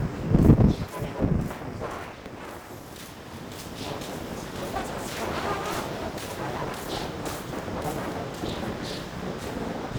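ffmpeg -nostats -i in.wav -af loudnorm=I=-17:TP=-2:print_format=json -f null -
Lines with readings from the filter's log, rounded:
"input_i" : "-29.7",
"input_tp" : "-2.9",
"input_lra" : "7.5",
"input_thresh" : "-39.9",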